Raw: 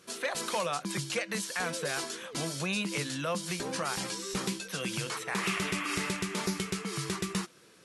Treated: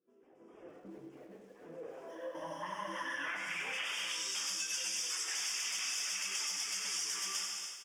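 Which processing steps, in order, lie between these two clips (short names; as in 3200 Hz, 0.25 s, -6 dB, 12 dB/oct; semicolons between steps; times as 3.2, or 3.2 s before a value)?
wavefolder -34 dBFS; AGC gain up to 15 dB; on a send: feedback echo 97 ms, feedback 59%, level -5 dB; on the sum: reverb removal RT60 1.1 s; 2.08–3.26 ripple EQ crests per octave 1.2, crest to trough 16 dB; non-linear reverb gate 0.35 s falling, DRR 1.5 dB; low-pass sweep 350 Hz -> 5200 Hz, 1.61–4.54; Butterworth band-stop 4100 Hz, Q 2.3; differentiator; compressor 4:1, threshold -36 dBFS, peak gain reduction 9.5 dB; lo-fi delay 0.284 s, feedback 35%, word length 10-bit, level -13 dB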